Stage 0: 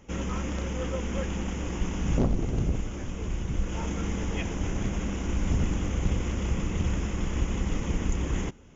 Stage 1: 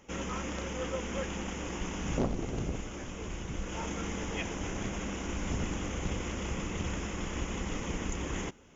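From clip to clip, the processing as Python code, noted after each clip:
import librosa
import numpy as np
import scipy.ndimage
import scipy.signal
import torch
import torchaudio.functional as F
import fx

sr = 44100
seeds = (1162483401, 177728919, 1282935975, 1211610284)

y = fx.low_shelf(x, sr, hz=230.0, db=-10.5)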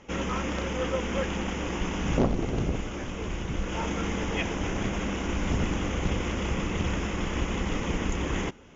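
y = scipy.signal.sosfilt(scipy.signal.butter(2, 5100.0, 'lowpass', fs=sr, output='sos'), x)
y = y * librosa.db_to_amplitude(6.5)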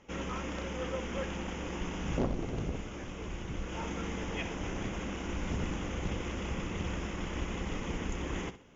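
y = fx.echo_feedback(x, sr, ms=63, feedback_pct=31, wet_db=-13)
y = y * librosa.db_to_amplitude(-7.5)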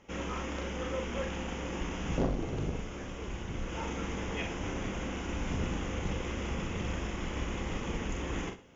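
y = fx.doubler(x, sr, ms=42.0, db=-5.5)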